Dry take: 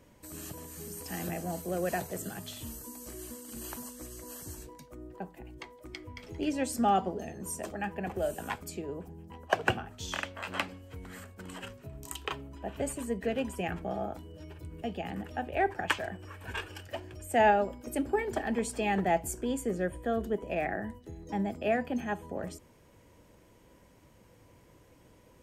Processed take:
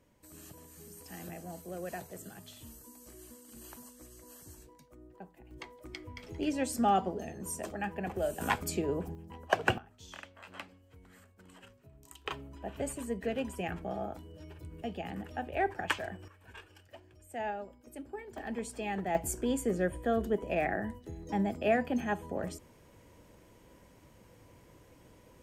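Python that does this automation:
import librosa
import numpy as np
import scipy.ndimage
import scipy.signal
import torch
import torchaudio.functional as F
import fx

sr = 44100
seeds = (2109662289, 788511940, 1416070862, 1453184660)

y = fx.gain(x, sr, db=fx.steps((0.0, -8.5), (5.51, -1.0), (8.41, 6.0), (9.15, -0.5), (9.78, -12.5), (12.26, -2.5), (16.28, -13.5), (18.38, -6.5), (19.15, 1.0)))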